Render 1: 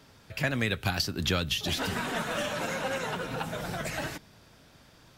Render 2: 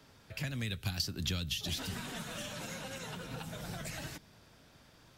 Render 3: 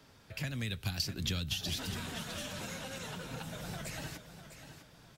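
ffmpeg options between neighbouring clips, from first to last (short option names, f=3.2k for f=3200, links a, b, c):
-filter_complex "[0:a]acrossover=split=210|3000[a][b][c];[b]acompressor=threshold=-41dB:ratio=6[d];[a][d][c]amix=inputs=3:normalize=0,volume=-4dB"
-af "aecho=1:1:652|1304|1956:0.282|0.0902|0.0289"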